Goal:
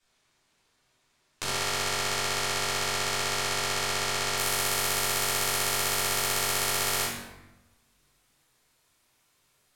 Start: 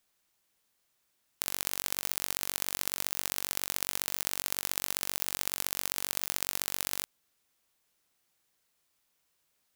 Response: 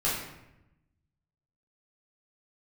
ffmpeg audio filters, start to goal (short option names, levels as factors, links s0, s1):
-filter_complex "[0:a]asetnsamples=n=441:p=0,asendcmd='4.36 lowpass f 12000',lowpass=7000[s0];[1:a]atrim=start_sample=2205,asetrate=37485,aresample=44100[s1];[s0][s1]afir=irnorm=-1:irlink=0"